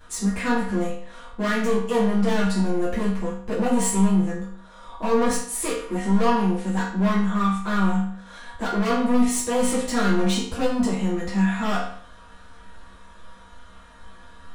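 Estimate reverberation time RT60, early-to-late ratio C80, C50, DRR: 0.60 s, 7.5 dB, 3.0 dB, -10.0 dB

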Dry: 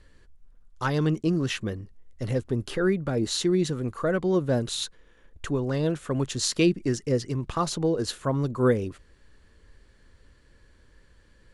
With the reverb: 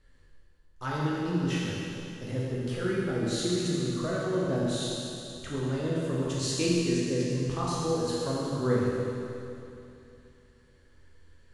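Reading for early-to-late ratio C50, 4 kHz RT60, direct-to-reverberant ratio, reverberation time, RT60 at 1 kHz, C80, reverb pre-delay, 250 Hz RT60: -3.0 dB, 2.8 s, -6.0 dB, 2.8 s, 2.8 s, -1.5 dB, 12 ms, 2.8 s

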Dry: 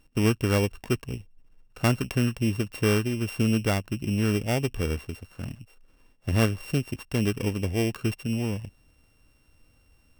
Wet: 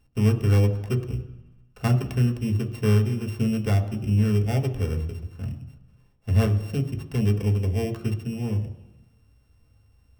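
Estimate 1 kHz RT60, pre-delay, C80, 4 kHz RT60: 1.1 s, 3 ms, 13.5 dB, 1.2 s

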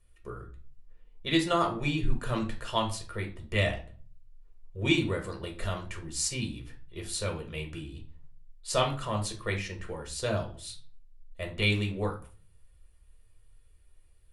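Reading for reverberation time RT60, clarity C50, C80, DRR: 0.40 s, 11.0 dB, 17.0 dB, 2.0 dB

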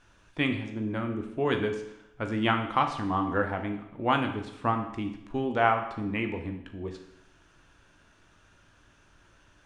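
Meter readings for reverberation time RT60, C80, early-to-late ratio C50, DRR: 0.80 s, 11.0 dB, 8.5 dB, 4.5 dB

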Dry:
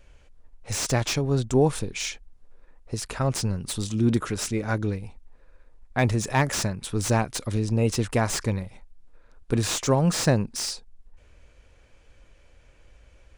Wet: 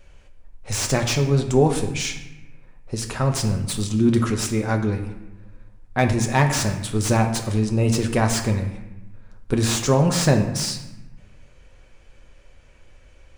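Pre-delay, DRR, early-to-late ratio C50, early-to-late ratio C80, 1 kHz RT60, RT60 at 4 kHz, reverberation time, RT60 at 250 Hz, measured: 5 ms, 4.0 dB, 8.5 dB, 11.0 dB, 1.0 s, 0.70 s, 1.0 s, 1.4 s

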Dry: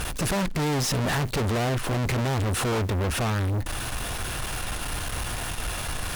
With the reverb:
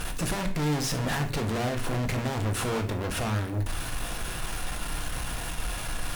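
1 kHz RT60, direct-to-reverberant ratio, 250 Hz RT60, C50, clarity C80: 0.40 s, 5.0 dB, 0.70 s, 11.0 dB, 14.0 dB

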